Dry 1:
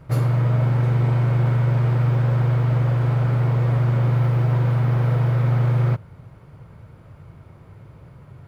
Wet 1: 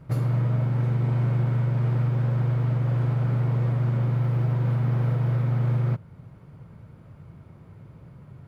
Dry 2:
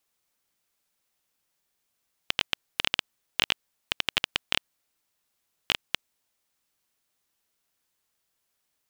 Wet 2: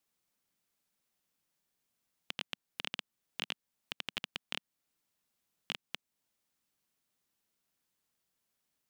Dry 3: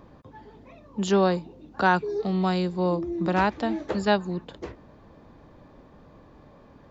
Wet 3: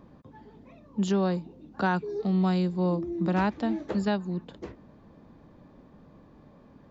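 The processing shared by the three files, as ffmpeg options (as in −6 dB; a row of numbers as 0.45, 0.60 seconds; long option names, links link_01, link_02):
-af "equalizer=frequency=200:width_type=o:width=1.3:gain=7,alimiter=limit=-11dB:level=0:latency=1:release=343,volume=-5.5dB"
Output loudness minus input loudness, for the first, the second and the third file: −4.5, −13.0, −3.0 LU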